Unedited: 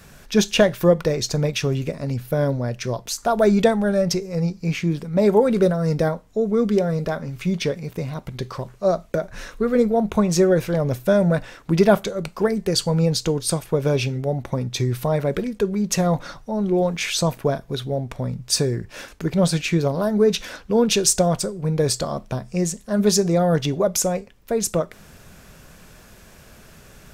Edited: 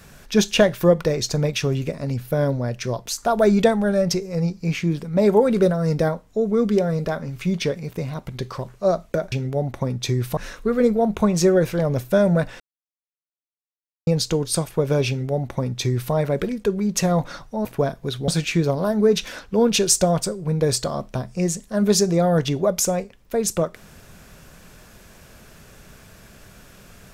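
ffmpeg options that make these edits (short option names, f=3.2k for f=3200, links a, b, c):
-filter_complex "[0:a]asplit=7[a][b][c][d][e][f][g];[a]atrim=end=9.322[h];[b]atrim=start=14.028:end=15.082[i];[c]atrim=start=9.318:end=11.55,asetpts=PTS-STARTPTS,afade=t=out:st=2.228:d=0.004:c=hsin[j];[d]atrim=start=11.55:end=13.02,asetpts=PTS-STARTPTS,volume=0[k];[e]atrim=start=13.02:end=16.602,asetpts=PTS-STARTPTS,afade=t=in:d=0.004:c=hsin[l];[f]atrim=start=17.308:end=17.942[m];[g]atrim=start=19.448[n];[h][i]acrossfade=d=0.004:c1=hsin:c2=hsin[o];[j][k][l]concat=n=3:v=0:a=1[p];[o][p]acrossfade=d=0.004:c1=hsin:c2=hsin[q];[q][m]acrossfade=d=0.004:c1=hsin:c2=hsin[r];[r][n]acrossfade=d=0.004:c1=hsin:c2=hsin"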